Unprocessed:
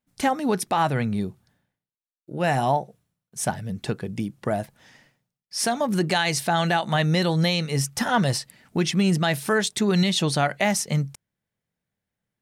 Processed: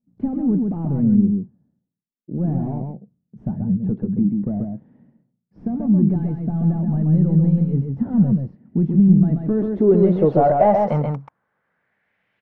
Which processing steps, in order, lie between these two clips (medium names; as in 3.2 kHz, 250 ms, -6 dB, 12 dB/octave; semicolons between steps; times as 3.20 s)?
overdrive pedal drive 22 dB, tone 2.7 kHz, clips at -11 dBFS; low-pass sweep 210 Hz -> 2.8 kHz, 9.14–12.41 s; delay 133 ms -4 dB